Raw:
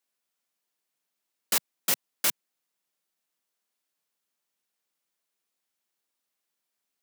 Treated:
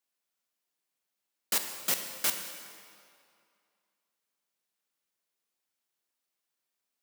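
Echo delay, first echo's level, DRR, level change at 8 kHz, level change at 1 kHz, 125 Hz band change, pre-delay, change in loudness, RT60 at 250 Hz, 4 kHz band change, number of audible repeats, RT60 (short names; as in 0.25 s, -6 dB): none, none, 5.0 dB, -2.5 dB, -2.5 dB, -2.5 dB, 10 ms, -3.5 dB, 2.3 s, -2.5 dB, none, 2.4 s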